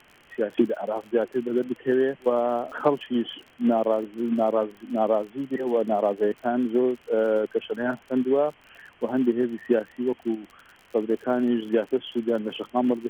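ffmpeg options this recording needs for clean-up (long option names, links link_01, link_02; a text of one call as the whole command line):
ffmpeg -i in.wav -af "adeclick=threshold=4,afwtdn=0.0035" out.wav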